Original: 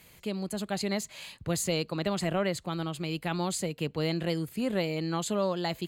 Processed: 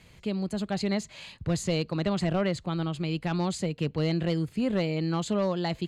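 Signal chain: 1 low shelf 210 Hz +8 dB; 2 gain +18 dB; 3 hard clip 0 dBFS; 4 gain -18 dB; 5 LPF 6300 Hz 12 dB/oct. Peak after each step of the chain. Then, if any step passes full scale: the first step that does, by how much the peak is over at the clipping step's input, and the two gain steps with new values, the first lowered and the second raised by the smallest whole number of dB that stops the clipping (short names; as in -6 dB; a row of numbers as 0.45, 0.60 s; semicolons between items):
-14.0, +4.0, 0.0, -18.0, -17.5 dBFS; step 2, 4.0 dB; step 2 +14 dB, step 4 -14 dB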